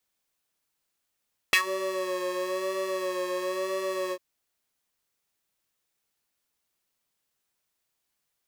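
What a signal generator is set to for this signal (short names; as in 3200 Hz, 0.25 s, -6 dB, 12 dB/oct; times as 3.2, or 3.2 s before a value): synth patch with vibrato F#4, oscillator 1 square, interval +7 st, detune 25 cents, oscillator 2 level -6.5 dB, sub -7.5 dB, noise -21.5 dB, filter highpass, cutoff 500 Hz, Q 3.6, filter envelope 2.5 oct, filter decay 0.14 s, filter sustain 5%, attack 1.1 ms, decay 0.09 s, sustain -18 dB, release 0.06 s, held 2.59 s, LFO 1 Hz, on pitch 40 cents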